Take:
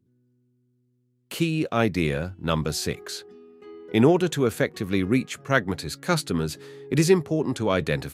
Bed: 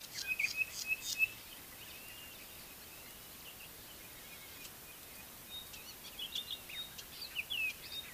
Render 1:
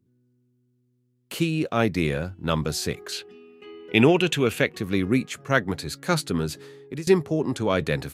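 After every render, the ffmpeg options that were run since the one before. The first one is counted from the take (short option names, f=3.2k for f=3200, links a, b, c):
-filter_complex "[0:a]asettb=1/sr,asplit=3[a][b][c];[a]atrim=end=3.124[d];[b]atrim=start=3.12:end=4.75,asetpts=PTS-STARTPTS,afade=t=in:d=0.004:c=qsin,afade=t=out:st=1.626:d=0.004:c=qsin,equalizer=f=2.7k:t=o:w=0.57:g=15[e];[c]atrim=start=4.746[f];[d][e]acrossfade=d=0.004:c1=hsin:c2=qsin[g];[g][f]acrossfade=d=0.004:c1=qsin:c2=hsin,asplit=2[h][i];[h]atrim=end=7.07,asetpts=PTS-STARTPTS,afade=t=out:st=6.61:d=0.46:silence=0.0841395[j];[i]atrim=start=7.07,asetpts=PTS-STARTPTS,afade=t=in:d=0.004:c=hsin:silence=0.0841395[k];[j][k]concat=n=2:v=0:a=1"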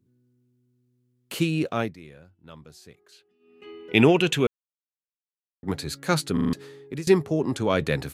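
-filter_complex "[0:a]asplit=10[a][b][c][d][e][f][g][h][i][j];[a]atrim=end=1.97,asetpts=PTS-STARTPTS,afade=t=out:st=1.67:d=0.3:silence=0.0841395[k];[b]atrim=start=1.97:end=3.39,asetpts=PTS-STARTPTS,volume=-21.5dB[l];[c]atrim=start=3.39:end=4.47,asetpts=PTS-STARTPTS,afade=t=in:d=0.3:silence=0.0841395,afade=t=out:st=1.076:d=0.004:c=hsin[m];[d]atrim=start=4.47:end=5.63,asetpts=PTS-STARTPTS,volume=0[n];[e]atrim=start=5.63:end=6.372,asetpts=PTS-STARTPTS,afade=t=in:d=0.004:c=hsin[o];[f]atrim=start=6.328:end=6.372[p];[g]atrim=start=6.328:end=6.372[q];[h]atrim=start=6.328:end=6.372[r];[i]atrim=start=6.328:end=6.372[s];[j]atrim=start=6.528[t];[k][l][m][n][o]concat=n=5:v=0:a=1[u];[u][p]acrossfade=d=0.004:c1=hsin:c2=hsin[v];[v][q]acrossfade=d=0.004:c1=hsin:c2=hsin[w];[w][r]acrossfade=d=0.004:c1=hsin:c2=hsin[x];[x][s]acrossfade=d=0.004:c1=hsin:c2=hsin[y];[y][t]acrossfade=d=0.004:c1=hsin:c2=hsin"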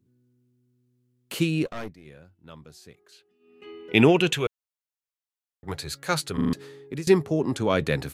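-filter_complex "[0:a]asplit=3[a][b][c];[a]afade=t=out:st=1.65:d=0.02[d];[b]aeval=exprs='(tanh(31.6*val(0)+0.8)-tanh(0.8))/31.6':c=same,afade=t=in:st=1.65:d=0.02,afade=t=out:st=2.05:d=0.02[e];[c]afade=t=in:st=2.05:d=0.02[f];[d][e][f]amix=inputs=3:normalize=0,asettb=1/sr,asplit=3[g][h][i];[g]atrim=end=4.334[j];[h]atrim=start=4.33:end=6.38,asetpts=PTS-STARTPTS,afade=t=in:d=0.004:c=qsin,afade=t=out:st=2.046:d=0.004:c=qsin,equalizer=f=240:w=1.5:g=-13.5[k];[i]atrim=start=6.376[l];[j][k]acrossfade=d=0.004:c1=hsin:c2=qsin[m];[m][l]acrossfade=d=0.004:c1=qsin:c2=hsin"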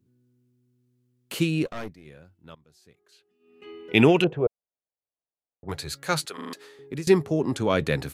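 -filter_complex "[0:a]asettb=1/sr,asplit=3[a][b][c];[a]atrim=end=4.244[d];[b]atrim=start=4.24:end=5.69,asetpts=PTS-STARTPTS,afade=t=in:d=0.004:c=qsin,afade=t=out:st=1.446:d=0.004:c=qsin,lowpass=f=650:t=q:w=2.1[e];[c]atrim=start=5.686[f];[d][e]acrossfade=d=0.004:c1=hsin:c2=qsin[g];[g][f]acrossfade=d=0.004:c1=qsin:c2=hsin,asettb=1/sr,asplit=3[h][i][j];[h]atrim=end=6.254[k];[i]atrim=start=6.25:end=6.79,asetpts=PTS-STARTPTS,afade=t=in:d=0.004:c=qsin,afade=t=out:st=0.536:d=0.004:c=qsin,highpass=550[l];[j]atrim=start=6.786[m];[k][l]acrossfade=d=0.004:c1=hsin:c2=qsin[n];[n][m]acrossfade=d=0.004:c1=qsin:c2=hsin,asplit=2[o][p];[o]atrim=end=2.55,asetpts=PTS-STARTPTS,afade=t=out:st=2.546:d=0.004:c=hsin:silence=0.158489[q];[p]atrim=start=2.55,asetpts=PTS-STARTPTS,afade=t=in:d=1.17:silence=0.158489[r];[q][r]concat=n=2:v=0:a=1"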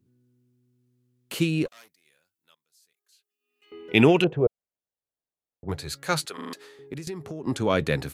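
-filter_complex "[0:a]asettb=1/sr,asplit=3[a][b][c];[a]atrim=end=1.684[d];[b]atrim=start=1.68:end=3.72,asetpts=PTS-STARTPTS,afade=t=in:d=0.004:c=qsin,afade=t=out:st=2.036:d=0.004:c=qsin,aderivative[e];[c]atrim=start=3.716[f];[d][e]acrossfade=d=0.004:c1=hsin:c2=qsin[g];[g][f]acrossfade=d=0.004:c1=qsin:c2=hsin,asettb=1/sr,asplit=3[h][i][j];[h]atrim=end=4.364[k];[i]atrim=start=4.36:end=5.84,asetpts=PTS-STARTPTS,afade=t=in:d=0.004:c=qsin,afade=t=out:st=1.476:d=0.004:c=qsin,tiltshelf=f=720:g=4[l];[j]atrim=start=5.836[m];[k][l]acrossfade=d=0.004:c1=hsin:c2=qsin[n];[n][m]acrossfade=d=0.004:c1=qsin:c2=hsin,asettb=1/sr,asplit=3[o][p][q];[o]atrim=end=6.934[r];[p]atrim=start=6.93:end=7.47,asetpts=PTS-STARTPTS,afade=t=in:d=0.004:c=qsin,afade=t=out:st=0.536:d=0.004:c=qsin,acompressor=threshold=-31dB:ratio=10:attack=3.2:release=140:knee=1:detection=peak[s];[q]atrim=start=7.466[t];[r][s]acrossfade=d=0.004:c1=hsin:c2=qsin[u];[u][t]acrossfade=d=0.004:c1=qsin:c2=hsin"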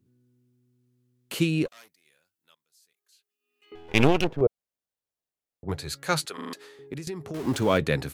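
-filter_complex "[0:a]asettb=1/sr,asplit=3[a][b][c];[a]atrim=end=3.754[d];[b]atrim=start=3.75:end=4.41,asetpts=PTS-STARTPTS,afade=t=in:d=0.004:c=qsin,afade=t=out:st=0.656:d=0.004:c=qsin,aeval=exprs='max(val(0),0)':c=same[e];[c]atrim=start=4.406[f];[d][e]acrossfade=d=0.004:c1=hsin:c2=qsin[g];[g][f]acrossfade=d=0.004:c1=qsin:c2=hsin,asettb=1/sr,asplit=3[h][i][j];[h]atrim=end=7.344[k];[i]atrim=start=7.34:end=7.78,asetpts=PTS-STARTPTS,afade=t=in:d=0.004:c=qsin,afade=t=out:st=0.436:d=0.004:c=qsin,aeval=exprs='val(0)+0.5*0.0211*sgn(val(0))':c=same[l];[j]atrim=start=7.776[m];[k][l]acrossfade=d=0.004:c1=hsin:c2=qsin[n];[n][m]acrossfade=d=0.004:c1=qsin:c2=hsin"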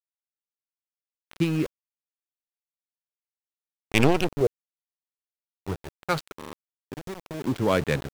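-af "adynamicsmooth=sensitivity=3:basefreq=780,aeval=exprs='val(0)*gte(abs(val(0)),0.0237)':c=same"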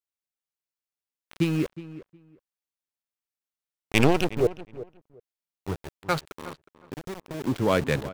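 -filter_complex "[0:a]asplit=2[a][b];[b]adelay=364,lowpass=f=2.2k:p=1,volume=-15.5dB,asplit=2[c][d];[d]adelay=364,lowpass=f=2.2k:p=1,volume=0.18[e];[a][c][e]amix=inputs=3:normalize=0"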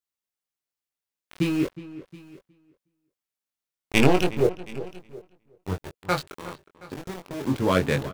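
-filter_complex "[0:a]asplit=2[a][b];[b]adelay=22,volume=-4dB[c];[a][c]amix=inputs=2:normalize=0,aecho=1:1:723:0.0841"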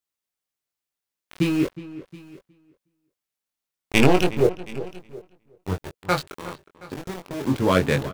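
-af "volume=2.5dB,alimiter=limit=-1dB:level=0:latency=1"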